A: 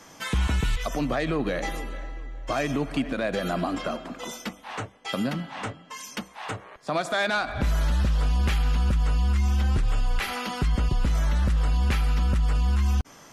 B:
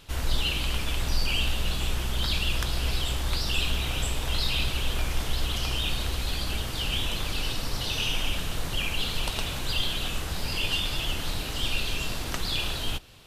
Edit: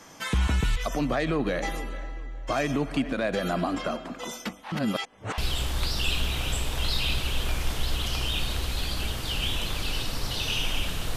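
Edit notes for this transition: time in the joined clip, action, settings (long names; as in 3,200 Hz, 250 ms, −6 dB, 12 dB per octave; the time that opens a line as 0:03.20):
A
0:04.72–0:05.38: reverse
0:05.38: continue with B from 0:02.88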